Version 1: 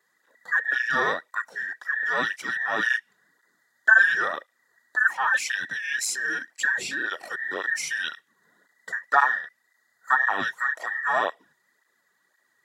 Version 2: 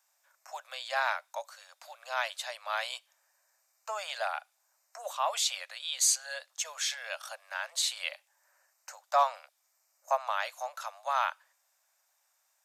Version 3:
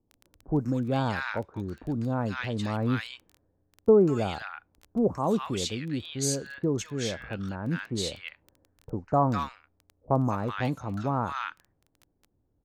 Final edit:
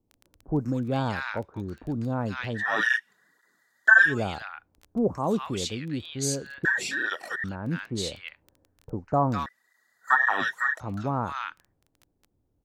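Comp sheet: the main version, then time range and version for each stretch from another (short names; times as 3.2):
3
2.59–4.1 from 1, crossfade 0.10 s
6.65–7.44 from 1
9.46–10.8 from 1
not used: 2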